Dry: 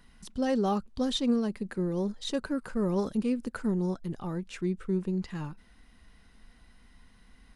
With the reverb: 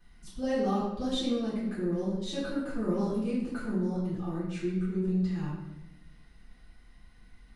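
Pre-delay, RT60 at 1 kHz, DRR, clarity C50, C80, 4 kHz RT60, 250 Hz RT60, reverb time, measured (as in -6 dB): 3 ms, 0.85 s, -11.0 dB, 1.5 dB, 4.5 dB, 0.75 s, 1.2 s, 1.0 s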